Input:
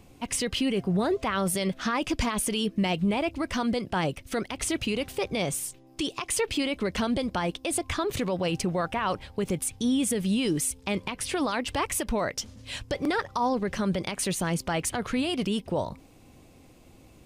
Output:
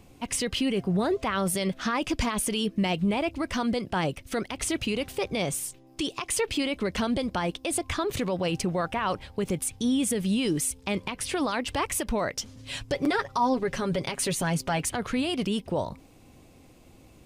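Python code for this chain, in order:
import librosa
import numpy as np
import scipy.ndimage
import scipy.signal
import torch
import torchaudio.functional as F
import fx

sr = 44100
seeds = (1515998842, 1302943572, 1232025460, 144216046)

y = fx.comb(x, sr, ms=7.3, depth=0.54, at=(12.46, 14.84))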